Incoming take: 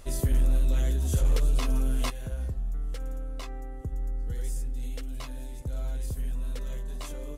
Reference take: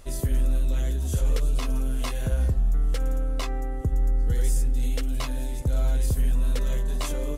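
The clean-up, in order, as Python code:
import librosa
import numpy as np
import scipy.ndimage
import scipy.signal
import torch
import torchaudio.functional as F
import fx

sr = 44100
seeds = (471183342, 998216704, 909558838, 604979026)

y = fx.fix_declip(x, sr, threshold_db=-17.5)
y = fx.fix_level(y, sr, at_s=2.1, step_db=9.0)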